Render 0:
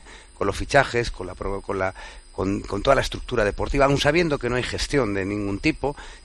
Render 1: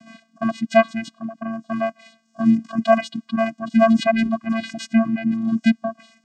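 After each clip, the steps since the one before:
channel vocoder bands 8, square 225 Hz
reverb reduction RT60 0.89 s
level +5 dB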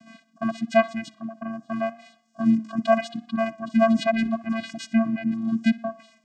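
tape delay 62 ms, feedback 53%, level −18.5 dB, low-pass 3,900 Hz
level −4 dB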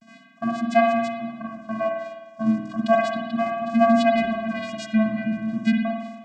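pitch vibrato 0.35 Hz 37 cents
on a send at −1 dB: convolution reverb RT60 1.2 s, pre-delay 51 ms

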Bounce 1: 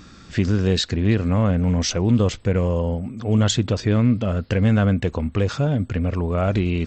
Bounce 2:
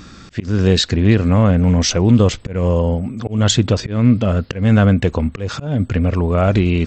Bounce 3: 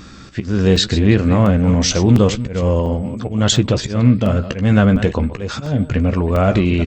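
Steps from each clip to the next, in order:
volume swells 212 ms; level +6 dB
delay that plays each chunk backwards 175 ms, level −12.5 dB; double-tracking delay 15 ms −10 dB; regular buffer underruns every 0.70 s, samples 128, zero, from 0:00.76

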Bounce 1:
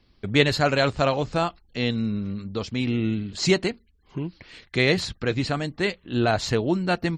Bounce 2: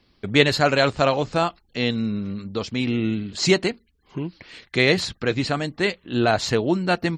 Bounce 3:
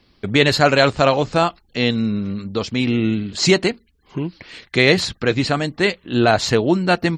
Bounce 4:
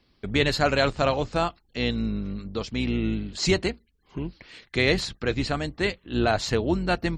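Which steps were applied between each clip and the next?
low-shelf EQ 94 Hz −9.5 dB; level +3 dB
boost into a limiter +5.5 dB; level −1 dB
sub-octave generator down 2 octaves, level −5 dB; level −8 dB

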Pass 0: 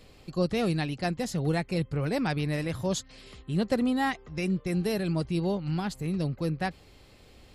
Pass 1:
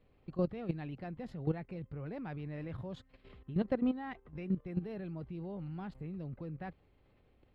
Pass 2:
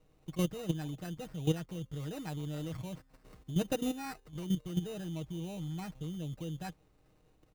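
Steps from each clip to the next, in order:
high-frequency loss of the air 490 metres; output level in coarse steps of 13 dB; level −2.5 dB
sample-rate reduction 3,300 Hz, jitter 0%; comb filter 6.4 ms, depth 54%

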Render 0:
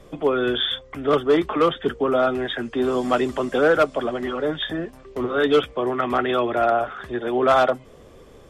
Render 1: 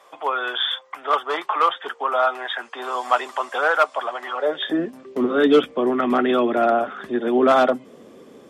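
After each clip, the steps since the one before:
high-pass filter sweep 900 Hz → 230 Hz, 0:04.32–0:04.83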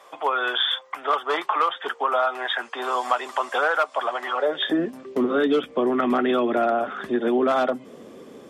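downward compressor 5 to 1, threshold −20 dBFS, peak gain reduction 9.5 dB
level +2 dB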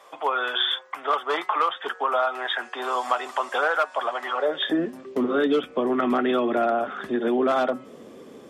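hum removal 185 Hz, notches 14
level −1 dB

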